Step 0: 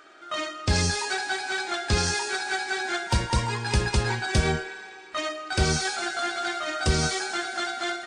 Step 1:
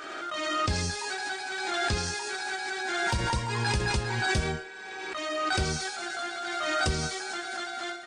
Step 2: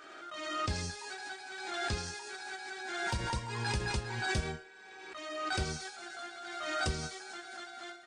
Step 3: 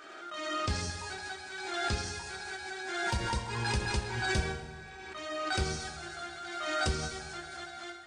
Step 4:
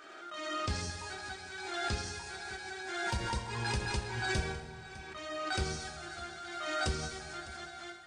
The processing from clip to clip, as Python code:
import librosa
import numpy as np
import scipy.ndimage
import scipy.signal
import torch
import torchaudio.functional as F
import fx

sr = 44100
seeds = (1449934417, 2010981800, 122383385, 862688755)

y1 = fx.pre_swell(x, sr, db_per_s=23.0)
y1 = y1 * librosa.db_to_amplitude(-6.5)
y2 = fx.upward_expand(y1, sr, threshold_db=-37.0, expansion=1.5)
y2 = y2 * librosa.db_to_amplitude(-5.0)
y3 = fx.rev_plate(y2, sr, seeds[0], rt60_s=2.1, hf_ratio=0.7, predelay_ms=0, drr_db=8.5)
y3 = y3 * librosa.db_to_amplitude(2.0)
y4 = y3 + 10.0 ** (-17.5 / 20.0) * np.pad(y3, (int(605 * sr / 1000.0), 0))[:len(y3)]
y4 = y4 * librosa.db_to_amplitude(-2.5)